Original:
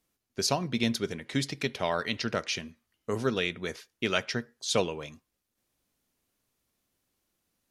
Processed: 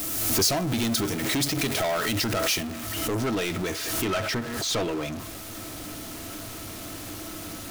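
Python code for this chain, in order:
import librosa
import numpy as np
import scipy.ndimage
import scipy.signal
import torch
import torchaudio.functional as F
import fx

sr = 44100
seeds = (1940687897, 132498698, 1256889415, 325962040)

y = x + 0.5 * 10.0 ** (-35.5 / 20.0) * np.sign(x)
y = fx.peak_eq(y, sr, hz=100.0, db=9.0, octaves=0.35)
y = fx.small_body(y, sr, hz=(310.0, 660.0, 1300.0), ring_ms=100, db=13)
y = 10.0 ** (-26.5 / 20.0) * np.tanh(y / 10.0 ** (-26.5 / 20.0))
y = fx.high_shelf(y, sr, hz=6100.0, db=fx.steps((0.0, 11.5), (2.6, 4.0), (4.04, -2.0)))
y = fx.pre_swell(y, sr, db_per_s=30.0)
y = y * 10.0 ** (3.5 / 20.0)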